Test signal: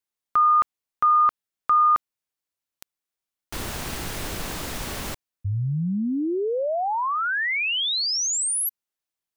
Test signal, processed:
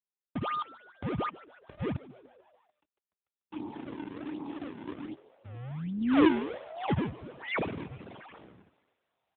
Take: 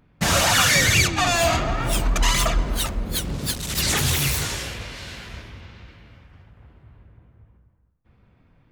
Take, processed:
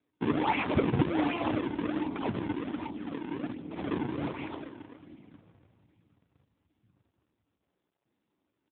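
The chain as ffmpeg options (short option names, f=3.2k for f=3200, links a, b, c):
-filter_complex "[0:a]afwtdn=0.0251,asplit=3[a][b][c];[a]bandpass=f=300:t=q:w=8,volume=0dB[d];[b]bandpass=f=870:t=q:w=8,volume=-6dB[e];[c]bandpass=f=2.24k:t=q:w=8,volume=-9dB[f];[d][e][f]amix=inputs=3:normalize=0,asplit=2[g][h];[h]aeval=exprs='(mod(14.1*val(0)+1,2)-1)/14.1':c=same,volume=-10.5dB[i];[g][i]amix=inputs=2:normalize=0,acrusher=samples=41:mix=1:aa=0.000001:lfo=1:lforange=65.6:lforate=1.3,asplit=6[j][k][l][m][n][o];[k]adelay=147,afreqshift=120,volume=-19.5dB[p];[l]adelay=294,afreqshift=240,volume=-23.9dB[q];[m]adelay=441,afreqshift=360,volume=-28.4dB[r];[n]adelay=588,afreqshift=480,volume=-32.8dB[s];[o]adelay=735,afreqshift=600,volume=-37.2dB[t];[j][p][q][r][s][t]amix=inputs=6:normalize=0,volume=5dB" -ar 8000 -c:a libopencore_amrnb -b:a 7950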